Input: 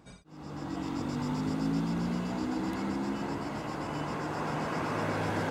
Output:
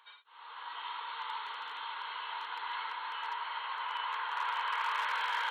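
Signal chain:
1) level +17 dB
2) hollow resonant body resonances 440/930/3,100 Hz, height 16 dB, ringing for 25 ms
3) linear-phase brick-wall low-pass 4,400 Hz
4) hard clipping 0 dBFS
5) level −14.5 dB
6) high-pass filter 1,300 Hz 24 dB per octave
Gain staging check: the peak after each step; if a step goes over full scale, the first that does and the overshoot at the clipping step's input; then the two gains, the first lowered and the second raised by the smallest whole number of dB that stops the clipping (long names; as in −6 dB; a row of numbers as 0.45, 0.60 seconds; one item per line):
−2.0, +4.0, +4.0, 0.0, −14.5, −21.0 dBFS
step 2, 4.0 dB
step 1 +13 dB, step 5 −10.5 dB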